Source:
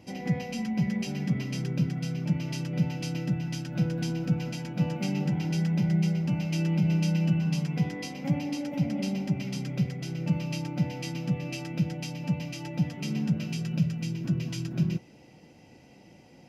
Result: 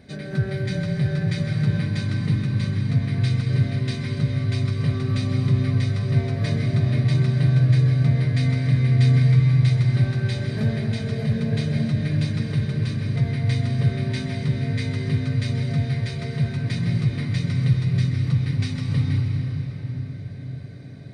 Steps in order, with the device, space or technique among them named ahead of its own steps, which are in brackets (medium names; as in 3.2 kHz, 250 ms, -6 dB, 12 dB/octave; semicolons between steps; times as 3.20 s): slowed and reverbed (tape speed -22%; reverberation RT60 5.2 s, pre-delay 116 ms, DRR 2 dB); trim +4 dB